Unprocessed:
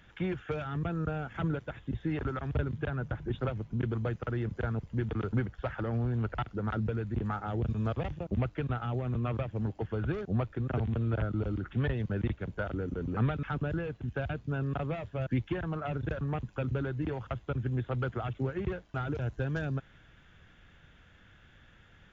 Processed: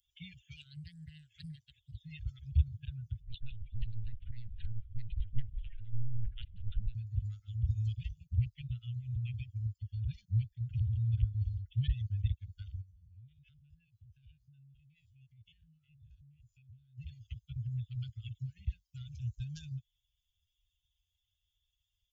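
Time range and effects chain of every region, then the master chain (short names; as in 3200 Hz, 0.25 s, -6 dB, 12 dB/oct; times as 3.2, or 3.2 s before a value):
0.56–2.04 low shelf 84 Hz -7.5 dB + Doppler distortion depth 0.77 ms
3.22–6.95 frequency-shifting echo 0.185 s, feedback 63%, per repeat -85 Hz, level -10.5 dB + LPC vocoder at 8 kHz pitch kept + Doppler distortion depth 0.55 ms
12.81–16.98 stepped spectrum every 50 ms + compressor, threshold -39 dBFS
whole clip: per-bin expansion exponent 2; inverse Chebyshev band-stop 280–1100 Hz, stop band 60 dB; bell 1400 Hz -6.5 dB 2.3 oct; gain +9 dB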